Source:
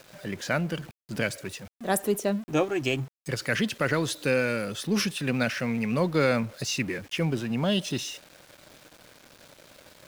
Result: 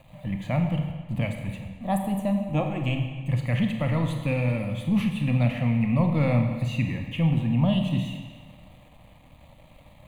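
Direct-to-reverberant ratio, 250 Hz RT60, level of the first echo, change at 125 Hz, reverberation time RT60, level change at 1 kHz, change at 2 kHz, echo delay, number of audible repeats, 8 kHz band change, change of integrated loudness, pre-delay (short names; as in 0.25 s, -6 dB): 4.0 dB, 1.5 s, none, +9.0 dB, 1.5 s, 0.0 dB, -6.0 dB, none, none, under -10 dB, +2.0 dB, 26 ms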